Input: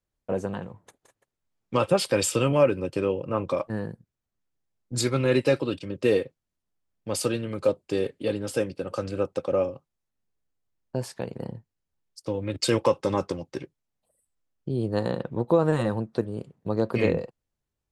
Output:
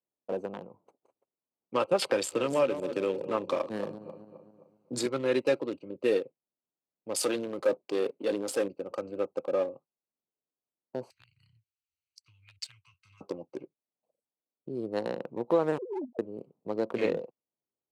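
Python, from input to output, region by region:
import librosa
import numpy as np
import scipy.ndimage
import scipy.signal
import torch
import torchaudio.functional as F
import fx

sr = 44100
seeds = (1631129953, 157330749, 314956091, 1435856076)

y = fx.chain(x, sr, fx.reverse_delay_fb(ms=131, feedback_pct=48, wet_db=-10.5),
    fx.band_squash(depth_pct=70), at=(2.02, 5.06))
y = fx.chain(y, sr, fx.leveller(passes=1),
    fx.peak_eq(hz=72.0, db=-6.5, octaves=2.7),
    fx.transient(attack_db=-1, sustain_db=6), at=(7.16, 8.68))
y = fx.chain(y, sr, fx.cheby2_bandstop(low_hz=230.0, high_hz=780.0, order=4, stop_db=60),
    fx.band_squash(depth_pct=70), at=(11.1, 13.21))
y = fx.chain(y, sr, fx.sine_speech(),
    fx.steep_lowpass(hz=870.0, slope=72),
    fx.over_compress(threshold_db=-30.0, ratio=-0.5), at=(15.78, 16.19))
y = fx.wiener(y, sr, points=25)
y = scipy.signal.sosfilt(scipy.signal.butter(2, 290.0, 'highpass', fs=sr, output='sos'), y)
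y = y * librosa.db_to_amplitude(-3.0)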